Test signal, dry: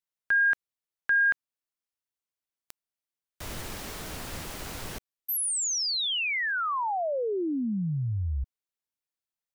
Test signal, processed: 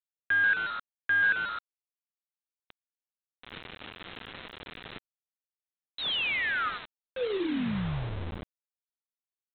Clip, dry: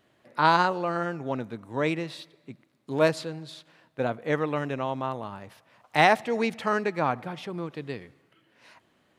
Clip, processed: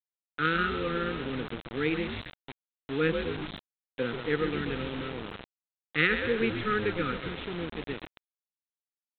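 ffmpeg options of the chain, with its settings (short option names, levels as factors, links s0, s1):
-filter_complex "[0:a]highpass=140,asplit=8[s0][s1][s2][s3][s4][s5][s6][s7];[s1]adelay=132,afreqshift=-110,volume=0.355[s8];[s2]adelay=264,afreqshift=-220,volume=0.202[s9];[s3]adelay=396,afreqshift=-330,volume=0.115[s10];[s4]adelay=528,afreqshift=-440,volume=0.0661[s11];[s5]adelay=660,afreqshift=-550,volume=0.0376[s12];[s6]adelay=792,afreqshift=-660,volume=0.0214[s13];[s7]adelay=924,afreqshift=-770,volume=0.0122[s14];[s0][s8][s9][s10][s11][s12][s13][s14]amix=inputs=8:normalize=0,afftfilt=real='re*(1-between(b*sr/4096,530,1200))':imag='im*(1-between(b*sr/4096,530,1200))':win_size=4096:overlap=0.75,aresample=8000,acrusher=bits=5:mix=0:aa=0.000001,aresample=44100,volume=0.841"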